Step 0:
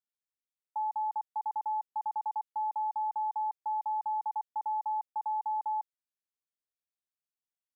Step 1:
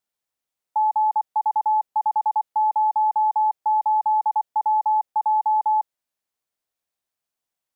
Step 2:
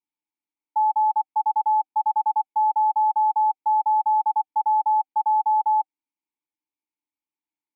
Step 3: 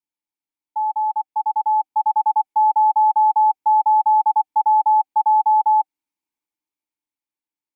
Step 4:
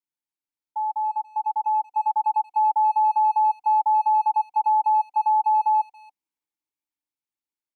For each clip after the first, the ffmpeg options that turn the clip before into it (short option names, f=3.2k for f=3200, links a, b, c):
-af "equalizer=f=710:t=o:w=1.1:g=5,volume=8.5dB"
-filter_complex "[0:a]asplit=3[a][b][c];[a]bandpass=f=300:t=q:w=8,volume=0dB[d];[b]bandpass=f=870:t=q:w=8,volume=-6dB[e];[c]bandpass=f=2.24k:t=q:w=8,volume=-9dB[f];[d][e][f]amix=inputs=3:normalize=0,bandreject=f=770:w=15,volume=6.5dB"
-af "dynaudnorm=f=380:g=9:m=7dB,volume=-2dB"
-filter_complex "[0:a]asplit=2[a][b];[b]adelay=280,highpass=300,lowpass=3.4k,asoftclip=type=hard:threshold=-19.5dB,volume=-22dB[c];[a][c]amix=inputs=2:normalize=0,volume=-4.5dB"